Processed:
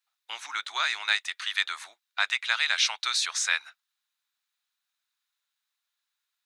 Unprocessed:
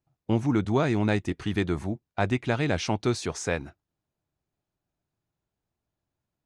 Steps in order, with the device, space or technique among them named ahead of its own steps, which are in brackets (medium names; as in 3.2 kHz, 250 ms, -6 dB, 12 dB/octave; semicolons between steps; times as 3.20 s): headphones lying on a table (high-pass 1.3 kHz 24 dB/octave; peaking EQ 3.8 kHz +8.5 dB 0.3 oct); trim +7.5 dB